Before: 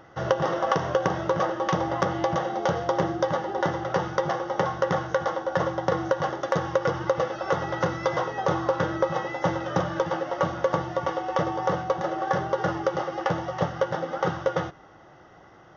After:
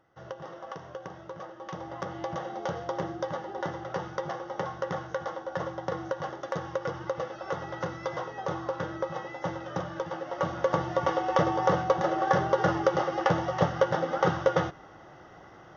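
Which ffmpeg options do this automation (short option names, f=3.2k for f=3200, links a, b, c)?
-af "volume=1dB,afade=t=in:st=1.53:d=0.95:silence=0.354813,afade=t=in:st=10.16:d=0.98:silence=0.354813"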